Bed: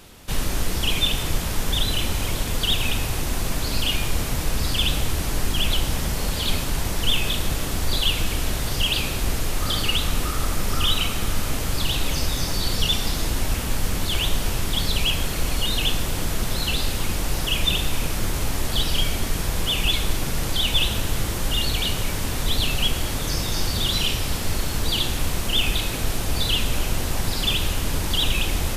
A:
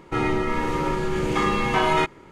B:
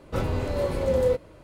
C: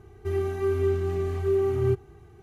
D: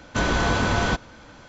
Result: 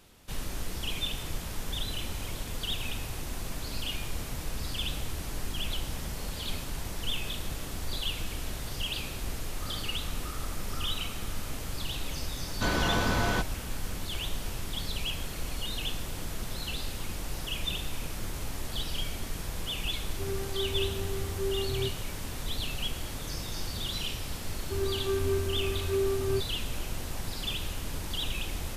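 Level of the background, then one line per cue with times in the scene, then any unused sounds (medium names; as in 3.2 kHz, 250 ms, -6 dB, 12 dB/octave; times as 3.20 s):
bed -11.5 dB
12.46 s: add D -6 dB
19.94 s: add C -9 dB
24.45 s: add C -7 dB + comb 3.3 ms, depth 99%
not used: A, B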